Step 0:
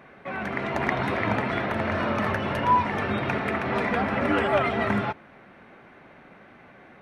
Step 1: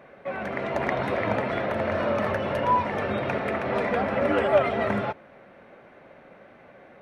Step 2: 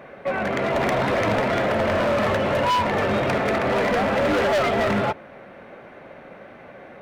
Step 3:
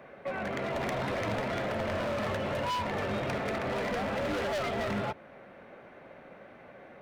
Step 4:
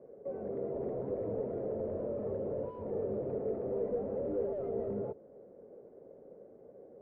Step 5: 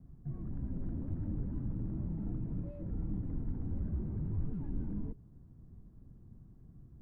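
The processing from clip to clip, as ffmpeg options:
-af "equalizer=f=550:t=o:w=0.58:g=9.5,volume=-3dB"
-af "asoftclip=type=hard:threshold=-25.5dB,volume=7.5dB"
-filter_complex "[0:a]acrossover=split=180|3000[a][b][c];[b]acompressor=threshold=-28dB:ratio=1.5[d];[a][d][c]amix=inputs=3:normalize=0,volume=-8dB"
-af "lowpass=f=450:t=q:w=5.1,volume=-8.5dB"
-af "afreqshift=-410"

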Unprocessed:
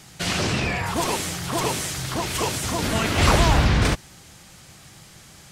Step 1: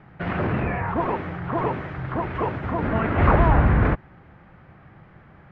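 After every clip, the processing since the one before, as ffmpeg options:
-af "lowpass=f=1.8k:w=0.5412,lowpass=f=1.8k:w=1.3066,volume=1dB"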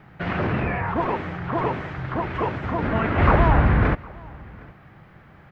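-af "crystalizer=i=2.5:c=0,aecho=1:1:761:0.0631"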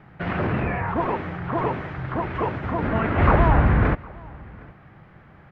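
-af "lowpass=f=3.2k:p=1"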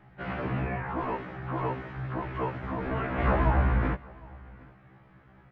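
-af "afftfilt=real='re*1.73*eq(mod(b,3),0)':imag='im*1.73*eq(mod(b,3),0)':win_size=2048:overlap=0.75,volume=-5dB"

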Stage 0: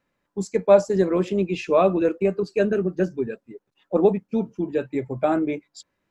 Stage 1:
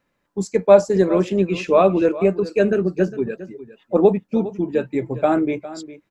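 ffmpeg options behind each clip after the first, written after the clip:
-af "aecho=1:1:407:0.158,volume=3.5dB"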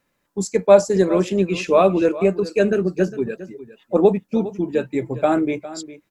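-af "aemphasis=mode=production:type=cd"

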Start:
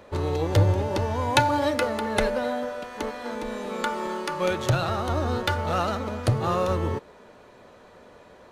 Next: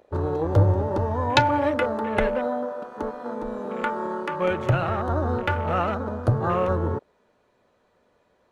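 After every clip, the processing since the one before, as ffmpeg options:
-af "afwtdn=0.0224,volume=1.5dB"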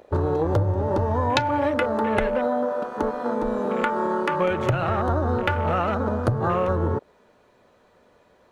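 -af "acompressor=threshold=-26dB:ratio=6,volume=7dB"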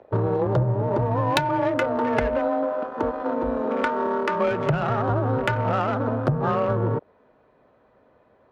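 -af "adynamicsmooth=sensitivity=1.5:basefreq=2.2k,afreqshift=25"

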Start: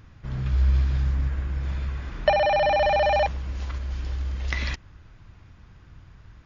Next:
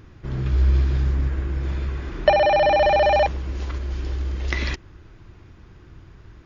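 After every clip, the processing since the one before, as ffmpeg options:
-af "equalizer=f=360:t=o:w=0.62:g=11,volume=2.5dB"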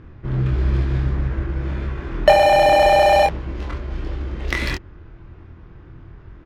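-filter_complex "[0:a]adynamicsmooth=sensitivity=6:basefreq=2.4k,asplit=2[a][b];[b]adelay=24,volume=-4dB[c];[a][c]amix=inputs=2:normalize=0,volume=3dB"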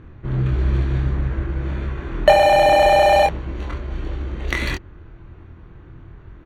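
-af "asuperstop=centerf=5100:order=20:qfactor=6.5"

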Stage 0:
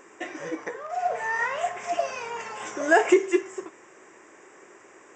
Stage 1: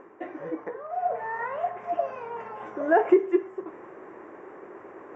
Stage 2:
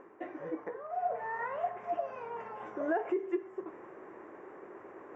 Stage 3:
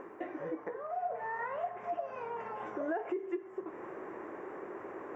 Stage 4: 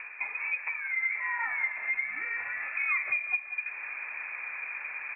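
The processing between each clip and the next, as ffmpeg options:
-af "lowpass=1.1k,areverse,acompressor=mode=upward:threshold=-34dB:ratio=2.5,areverse"
-af "alimiter=limit=-18dB:level=0:latency=1:release=204,volume=-5dB"
-af "acompressor=threshold=-48dB:ratio=2,volume=7dB"
-af "lowpass=f=2.4k:t=q:w=0.5098,lowpass=f=2.4k:t=q:w=0.6013,lowpass=f=2.4k:t=q:w=0.9,lowpass=f=2.4k:t=q:w=2.563,afreqshift=-2800,aecho=1:1:187|374|561|748:0.251|0.105|0.0443|0.0186,volume=5.5dB"

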